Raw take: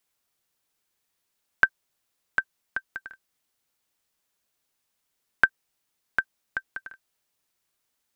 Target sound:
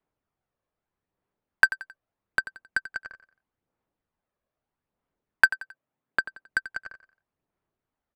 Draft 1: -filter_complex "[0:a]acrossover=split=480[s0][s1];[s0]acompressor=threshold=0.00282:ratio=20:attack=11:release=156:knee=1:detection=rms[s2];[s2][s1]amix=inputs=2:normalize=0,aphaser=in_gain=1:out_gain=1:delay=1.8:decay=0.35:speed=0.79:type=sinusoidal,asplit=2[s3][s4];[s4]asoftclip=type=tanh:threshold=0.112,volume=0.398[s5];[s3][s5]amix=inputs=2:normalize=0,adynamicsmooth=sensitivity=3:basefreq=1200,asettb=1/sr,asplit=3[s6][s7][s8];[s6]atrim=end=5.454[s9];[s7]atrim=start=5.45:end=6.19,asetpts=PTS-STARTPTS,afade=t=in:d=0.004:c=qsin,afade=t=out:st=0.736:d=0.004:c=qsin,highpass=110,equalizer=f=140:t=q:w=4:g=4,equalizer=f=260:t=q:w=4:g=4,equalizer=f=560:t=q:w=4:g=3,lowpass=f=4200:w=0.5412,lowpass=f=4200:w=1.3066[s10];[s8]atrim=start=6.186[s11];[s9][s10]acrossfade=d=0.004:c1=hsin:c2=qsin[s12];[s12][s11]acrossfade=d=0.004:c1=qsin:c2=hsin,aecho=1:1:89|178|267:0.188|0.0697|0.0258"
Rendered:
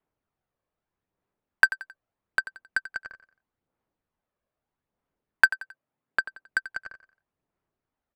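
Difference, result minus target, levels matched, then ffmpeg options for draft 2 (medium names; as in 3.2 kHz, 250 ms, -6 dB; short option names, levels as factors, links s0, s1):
compression: peak gain reduction +8 dB
-filter_complex "[0:a]acrossover=split=480[s0][s1];[s0]acompressor=threshold=0.0075:ratio=20:attack=11:release=156:knee=1:detection=rms[s2];[s2][s1]amix=inputs=2:normalize=0,aphaser=in_gain=1:out_gain=1:delay=1.8:decay=0.35:speed=0.79:type=sinusoidal,asplit=2[s3][s4];[s4]asoftclip=type=tanh:threshold=0.112,volume=0.398[s5];[s3][s5]amix=inputs=2:normalize=0,adynamicsmooth=sensitivity=3:basefreq=1200,asettb=1/sr,asplit=3[s6][s7][s8];[s6]atrim=end=5.454[s9];[s7]atrim=start=5.45:end=6.19,asetpts=PTS-STARTPTS,afade=t=in:d=0.004:c=qsin,afade=t=out:st=0.736:d=0.004:c=qsin,highpass=110,equalizer=f=140:t=q:w=4:g=4,equalizer=f=260:t=q:w=4:g=4,equalizer=f=560:t=q:w=4:g=3,lowpass=f=4200:w=0.5412,lowpass=f=4200:w=1.3066[s10];[s8]atrim=start=6.186[s11];[s9][s10]acrossfade=d=0.004:c1=hsin:c2=qsin[s12];[s12][s11]acrossfade=d=0.004:c1=qsin:c2=hsin,aecho=1:1:89|178|267:0.188|0.0697|0.0258"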